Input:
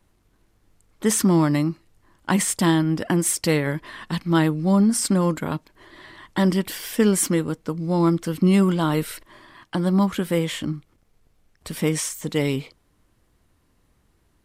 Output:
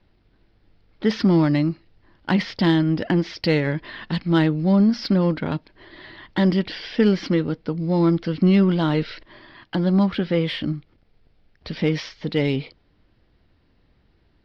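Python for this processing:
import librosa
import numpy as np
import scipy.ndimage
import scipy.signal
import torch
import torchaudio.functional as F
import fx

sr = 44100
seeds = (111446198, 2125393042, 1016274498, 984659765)

p1 = scipy.signal.sosfilt(scipy.signal.butter(12, 5100.0, 'lowpass', fs=sr, output='sos'), x)
p2 = fx.peak_eq(p1, sr, hz=1100.0, db=-6.5, octaves=0.46)
p3 = 10.0 ** (-25.0 / 20.0) * np.tanh(p2 / 10.0 ** (-25.0 / 20.0))
y = p2 + F.gain(torch.from_numpy(p3), -8.0).numpy()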